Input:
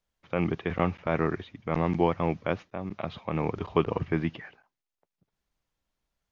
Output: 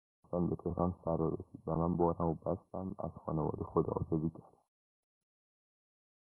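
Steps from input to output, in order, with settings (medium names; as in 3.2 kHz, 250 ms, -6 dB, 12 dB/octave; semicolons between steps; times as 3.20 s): gate with hold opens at -50 dBFS; in parallel at -8.5 dB: overload inside the chain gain 26.5 dB; on the sum: brick-wall FIR low-pass 1.2 kHz; trim -8 dB; MP2 64 kbps 44.1 kHz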